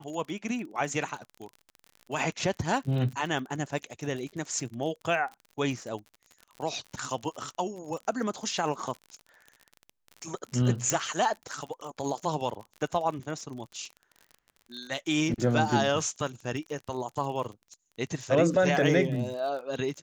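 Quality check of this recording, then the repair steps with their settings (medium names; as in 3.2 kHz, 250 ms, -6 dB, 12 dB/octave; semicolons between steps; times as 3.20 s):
crackle 47 per s -37 dBFS
10.90 s: pop -11 dBFS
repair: de-click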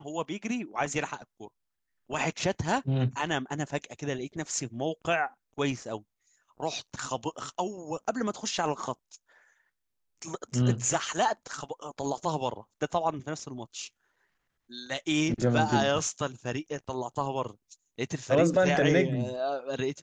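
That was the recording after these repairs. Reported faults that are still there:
nothing left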